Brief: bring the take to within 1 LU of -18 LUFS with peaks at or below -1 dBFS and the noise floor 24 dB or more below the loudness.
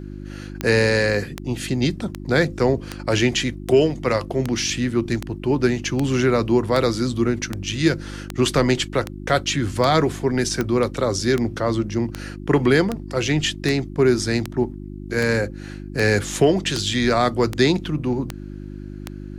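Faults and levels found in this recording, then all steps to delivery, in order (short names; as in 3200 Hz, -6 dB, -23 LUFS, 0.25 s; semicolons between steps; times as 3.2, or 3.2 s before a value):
clicks 25; hum 50 Hz; harmonics up to 350 Hz; hum level -31 dBFS; loudness -21.0 LUFS; peak -4.5 dBFS; loudness target -18.0 LUFS
-> de-click; de-hum 50 Hz, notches 7; gain +3 dB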